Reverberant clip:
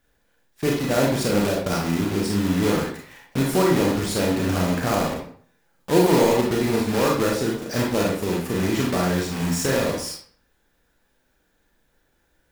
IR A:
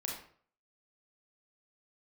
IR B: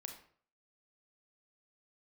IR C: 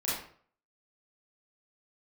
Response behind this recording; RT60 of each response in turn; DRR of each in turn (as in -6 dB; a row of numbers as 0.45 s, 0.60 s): A; 0.50 s, 0.50 s, 0.50 s; -2.0 dB, 3.5 dB, -9.5 dB